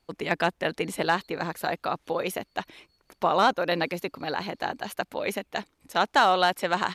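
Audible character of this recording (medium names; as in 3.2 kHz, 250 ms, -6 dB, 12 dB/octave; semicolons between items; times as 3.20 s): noise floor -71 dBFS; spectral tilt -2.0 dB/octave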